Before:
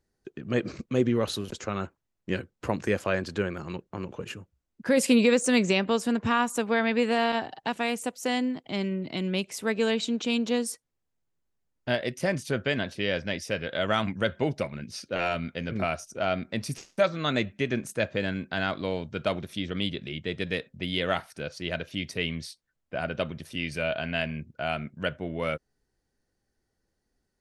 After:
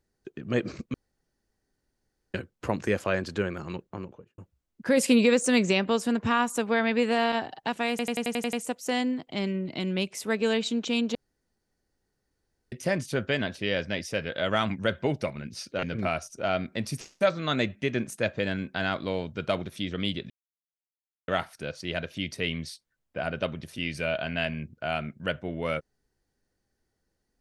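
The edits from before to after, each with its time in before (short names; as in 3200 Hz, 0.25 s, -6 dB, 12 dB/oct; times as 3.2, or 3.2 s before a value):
0.94–2.34 room tone
3.83–4.38 studio fade out
7.9 stutter 0.09 s, 8 plays
10.52–12.09 room tone
15.2–15.6 cut
20.07–21.05 mute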